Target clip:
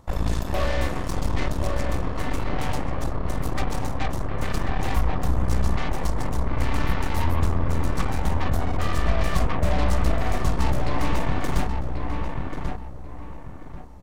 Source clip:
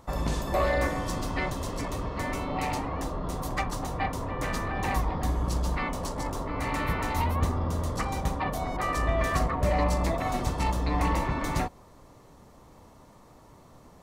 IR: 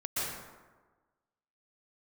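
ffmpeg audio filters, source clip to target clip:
-filter_complex "[0:a]aeval=exprs='0.188*(cos(1*acos(clip(val(0)/0.188,-1,1)))-cos(1*PI/2))+0.0376*(cos(8*acos(clip(val(0)/0.188,-1,1)))-cos(8*PI/2))':c=same,lowshelf=f=210:g=8,asplit=2[s0][s1];[s1]adelay=1088,lowpass=f=2000:p=1,volume=0.631,asplit=2[s2][s3];[s3]adelay=1088,lowpass=f=2000:p=1,volume=0.32,asplit=2[s4][s5];[s5]adelay=1088,lowpass=f=2000:p=1,volume=0.32,asplit=2[s6][s7];[s7]adelay=1088,lowpass=f=2000:p=1,volume=0.32[s8];[s0][s2][s4][s6][s8]amix=inputs=5:normalize=0,volume=0.668"

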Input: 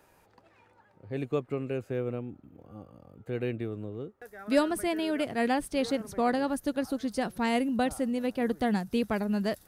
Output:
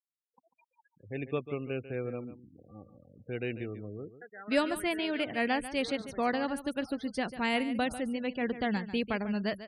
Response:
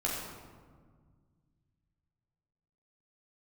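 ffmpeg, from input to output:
-af "afftfilt=real='re*gte(hypot(re,im),0.00631)':imag='im*gte(hypot(re,im),0.00631)':win_size=1024:overlap=0.75,equalizer=f=2500:w=0.98:g=8,aecho=1:1:144:0.224,volume=0.631"

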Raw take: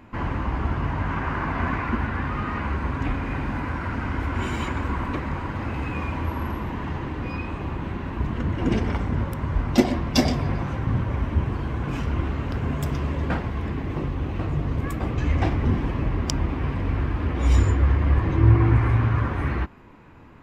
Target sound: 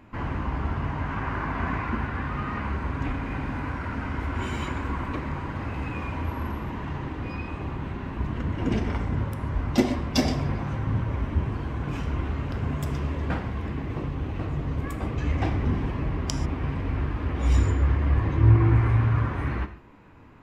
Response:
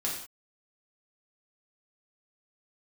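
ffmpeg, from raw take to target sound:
-filter_complex "[0:a]asplit=2[s0][s1];[1:a]atrim=start_sample=2205,afade=t=out:st=0.13:d=0.01,atrim=end_sample=6174,asetrate=24255,aresample=44100[s2];[s1][s2]afir=irnorm=-1:irlink=0,volume=0.158[s3];[s0][s3]amix=inputs=2:normalize=0,volume=0.562"

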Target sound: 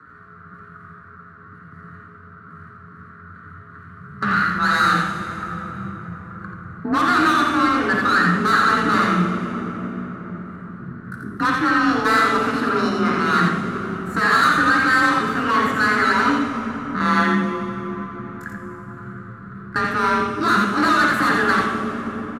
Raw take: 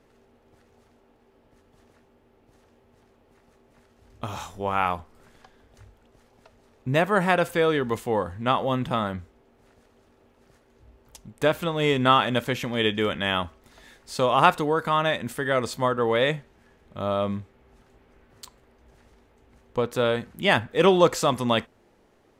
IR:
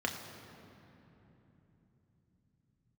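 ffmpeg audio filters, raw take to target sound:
-filter_complex "[0:a]aresample=22050,aresample=44100,asetrate=72056,aresample=44100,atempo=0.612027,firequalizer=gain_entry='entry(170,0);entry(790,-27);entry(1200,12);entry(2600,-15)':delay=0.05:min_phase=1,asoftclip=type=tanh:threshold=0.0251,aecho=1:1:86:0.596[s0];[1:a]atrim=start_sample=2205,asetrate=24255,aresample=44100[s1];[s0][s1]afir=irnorm=-1:irlink=0,afreqshift=32,volume=2.11"

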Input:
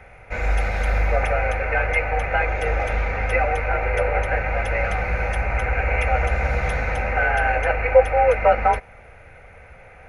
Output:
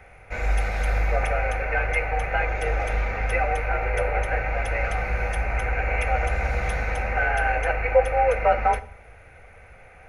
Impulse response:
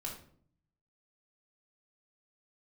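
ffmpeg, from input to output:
-filter_complex "[0:a]highshelf=f=5700:g=6.5,asplit=2[s0][s1];[1:a]atrim=start_sample=2205[s2];[s1][s2]afir=irnorm=-1:irlink=0,volume=0.398[s3];[s0][s3]amix=inputs=2:normalize=0,volume=0.531"

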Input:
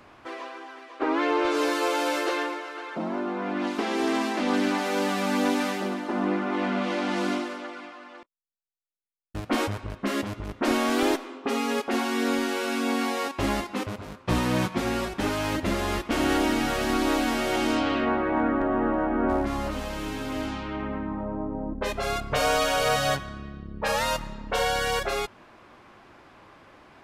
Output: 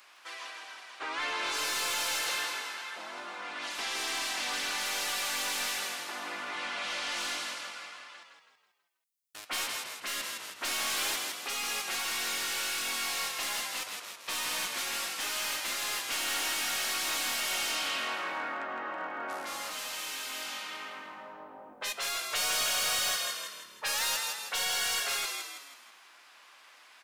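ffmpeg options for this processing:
-filter_complex "[0:a]aderivative,asplit=6[s0][s1][s2][s3][s4][s5];[s1]adelay=162,afreqshift=-43,volume=0.501[s6];[s2]adelay=324,afreqshift=-86,volume=0.216[s7];[s3]adelay=486,afreqshift=-129,volume=0.0923[s8];[s4]adelay=648,afreqshift=-172,volume=0.0398[s9];[s5]adelay=810,afreqshift=-215,volume=0.0172[s10];[s0][s6][s7][s8][s9][s10]amix=inputs=6:normalize=0,asplit=2[s11][s12];[s12]highpass=f=720:p=1,volume=7.08,asoftclip=type=tanh:threshold=0.119[s13];[s11][s13]amix=inputs=2:normalize=0,lowpass=f=7100:p=1,volume=0.501,volume=0.841"

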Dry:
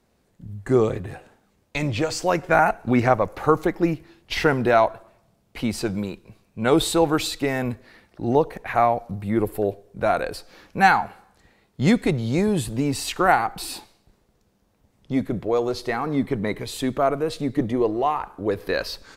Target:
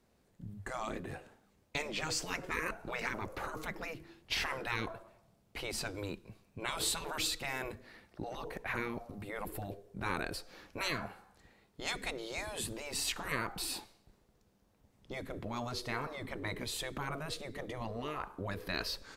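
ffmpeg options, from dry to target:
-af "afftfilt=real='re*lt(hypot(re,im),0.2)':imag='im*lt(hypot(re,im),0.2)':win_size=1024:overlap=0.75,adynamicequalizer=threshold=0.00316:dfrequency=780:dqfactor=4.6:tfrequency=780:tqfactor=4.6:attack=5:release=100:ratio=0.375:range=3:mode=cutabove:tftype=bell,volume=0.531"

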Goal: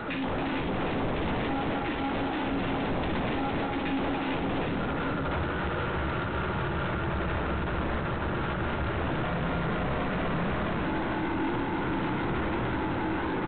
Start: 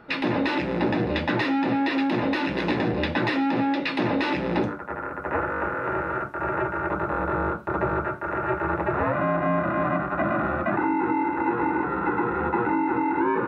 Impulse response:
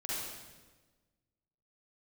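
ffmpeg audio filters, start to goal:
-filter_complex "[0:a]acrossover=split=210[s0][s1];[s1]acompressor=threshold=0.00794:ratio=4[s2];[s0][s2]amix=inputs=2:normalize=0,aeval=exprs='0.0891*sin(PI/2*4.47*val(0)/0.0891)':c=same,alimiter=level_in=1.26:limit=0.0631:level=0:latency=1:release=32,volume=0.794,asplit=2[s3][s4];[s4]aecho=0:1:56|60|278|452|761:0.158|0.473|0.501|0.668|0.596[s5];[s3][s5]amix=inputs=2:normalize=0,aeval=exprs='(tanh(17.8*val(0)+0.3)-tanh(0.3))/17.8':c=same" -ar 8000 -c:a adpcm_g726 -b:a 24k

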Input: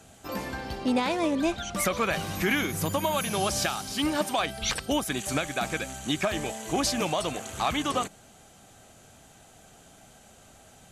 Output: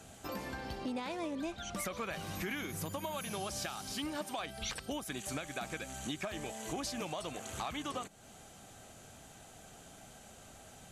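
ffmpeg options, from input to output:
-af "acompressor=threshold=0.0112:ratio=3,volume=0.891"

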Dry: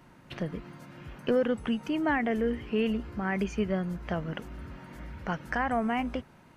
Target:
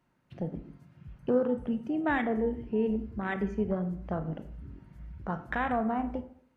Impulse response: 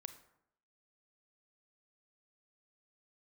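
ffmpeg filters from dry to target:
-filter_complex "[0:a]afwtdn=0.0251[s0];[1:a]atrim=start_sample=2205,asetrate=57330,aresample=44100[s1];[s0][s1]afir=irnorm=-1:irlink=0,volume=2.11"

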